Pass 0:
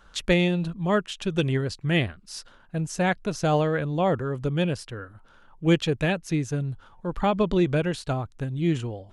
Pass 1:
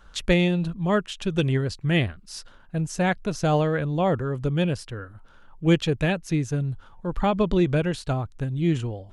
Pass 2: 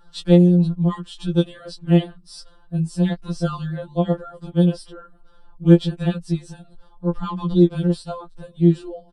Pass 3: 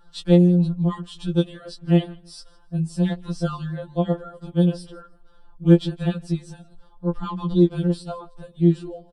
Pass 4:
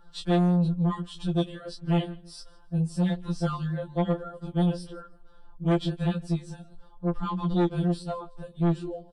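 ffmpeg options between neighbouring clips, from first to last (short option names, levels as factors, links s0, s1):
-af "lowshelf=f=110:g=6"
-af "aecho=1:1:5.6:0.87,afftfilt=real='re*2.83*eq(mod(b,8),0)':imag='im*2.83*eq(mod(b,8),0)':win_size=2048:overlap=0.75,volume=0.75"
-af "aecho=1:1:160|320:0.0631|0.0151,volume=0.794"
-filter_complex "[0:a]acrossover=split=2000[s0][s1];[s0]asoftclip=type=tanh:threshold=0.112[s2];[s1]flanger=delay=16:depth=5.5:speed=1.6[s3];[s2][s3]amix=inputs=2:normalize=0"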